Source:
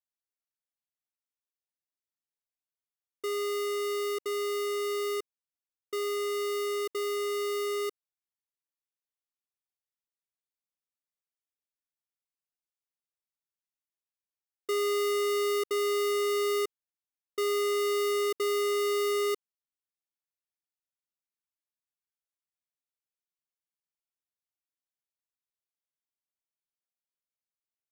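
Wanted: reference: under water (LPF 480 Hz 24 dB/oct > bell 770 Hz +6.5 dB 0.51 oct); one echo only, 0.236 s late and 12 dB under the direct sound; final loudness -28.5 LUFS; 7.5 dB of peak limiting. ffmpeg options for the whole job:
-af "alimiter=level_in=11dB:limit=-24dB:level=0:latency=1,volume=-11dB,lowpass=f=480:w=0.5412,lowpass=f=480:w=1.3066,equalizer=f=770:t=o:w=0.51:g=6.5,aecho=1:1:236:0.251,volume=11.5dB"

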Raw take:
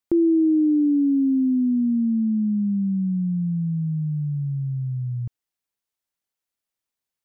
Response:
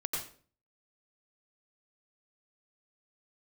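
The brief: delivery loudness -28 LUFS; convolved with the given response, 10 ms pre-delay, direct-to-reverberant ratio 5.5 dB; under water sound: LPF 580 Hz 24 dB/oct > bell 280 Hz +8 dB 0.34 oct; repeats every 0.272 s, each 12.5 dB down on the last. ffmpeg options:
-filter_complex "[0:a]aecho=1:1:272|544|816:0.237|0.0569|0.0137,asplit=2[a][b];[1:a]atrim=start_sample=2205,adelay=10[c];[b][c]afir=irnorm=-1:irlink=0,volume=-9dB[d];[a][d]amix=inputs=2:normalize=0,lowpass=f=580:w=0.5412,lowpass=f=580:w=1.3066,equalizer=f=280:t=o:w=0.34:g=8,volume=-12.5dB"

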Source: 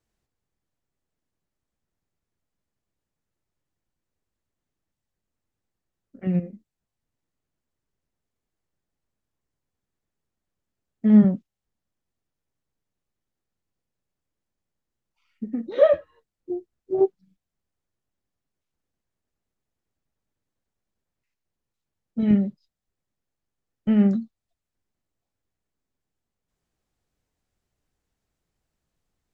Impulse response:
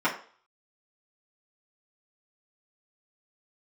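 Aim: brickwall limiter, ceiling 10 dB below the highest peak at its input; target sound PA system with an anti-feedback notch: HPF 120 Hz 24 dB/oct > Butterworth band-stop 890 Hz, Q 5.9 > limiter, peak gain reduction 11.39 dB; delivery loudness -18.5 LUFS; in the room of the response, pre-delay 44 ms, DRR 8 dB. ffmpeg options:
-filter_complex "[0:a]alimiter=limit=-15.5dB:level=0:latency=1,asplit=2[a][b];[1:a]atrim=start_sample=2205,adelay=44[c];[b][c]afir=irnorm=-1:irlink=0,volume=-21.5dB[d];[a][d]amix=inputs=2:normalize=0,highpass=f=120:w=0.5412,highpass=f=120:w=1.3066,asuperstop=centerf=890:order=8:qfactor=5.9,volume=14.5dB,alimiter=limit=-8.5dB:level=0:latency=1"

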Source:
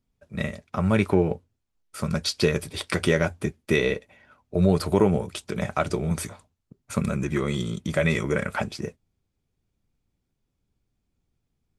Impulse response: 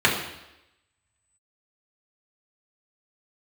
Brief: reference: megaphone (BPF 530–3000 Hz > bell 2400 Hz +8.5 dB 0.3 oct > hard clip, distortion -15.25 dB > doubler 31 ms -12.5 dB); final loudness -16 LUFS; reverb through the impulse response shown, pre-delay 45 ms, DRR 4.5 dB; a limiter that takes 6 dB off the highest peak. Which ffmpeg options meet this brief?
-filter_complex "[0:a]alimiter=limit=-12.5dB:level=0:latency=1,asplit=2[a][b];[1:a]atrim=start_sample=2205,adelay=45[c];[b][c]afir=irnorm=-1:irlink=0,volume=-24dB[d];[a][d]amix=inputs=2:normalize=0,highpass=530,lowpass=3k,equalizer=f=2.4k:t=o:w=0.3:g=8.5,asoftclip=type=hard:threshold=-21.5dB,asplit=2[e][f];[f]adelay=31,volume=-12.5dB[g];[e][g]amix=inputs=2:normalize=0,volume=15dB"

